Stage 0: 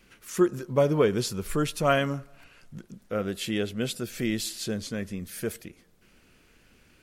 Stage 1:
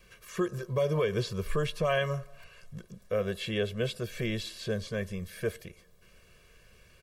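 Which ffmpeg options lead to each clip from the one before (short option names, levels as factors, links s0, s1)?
-filter_complex "[0:a]acrossover=split=3900[s0][s1];[s1]acompressor=threshold=0.00282:ratio=4:attack=1:release=60[s2];[s0][s2]amix=inputs=2:normalize=0,aecho=1:1:1.8:0.92,acrossover=split=2400[s3][s4];[s3]alimiter=limit=0.133:level=0:latency=1:release=141[s5];[s5][s4]amix=inputs=2:normalize=0,volume=0.794"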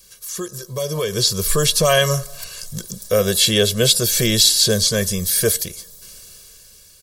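-af "dynaudnorm=f=300:g=9:m=4.47,aexciter=amount=6.4:drive=7.3:freq=3700"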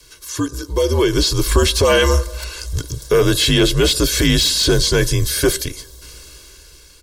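-af "apsyclip=5.96,afreqshift=-70,aemphasis=mode=reproduction:type=50kf,volume=0.422"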